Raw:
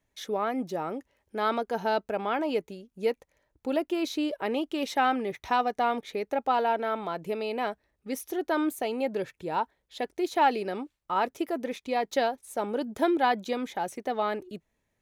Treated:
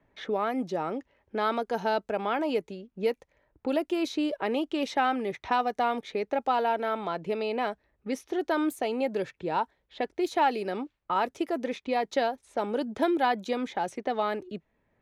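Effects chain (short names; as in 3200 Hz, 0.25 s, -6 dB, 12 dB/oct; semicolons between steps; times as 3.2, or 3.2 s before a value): low-pass opened by the level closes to 1700 Hz, open at -24 dBFS; three-band squash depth 40%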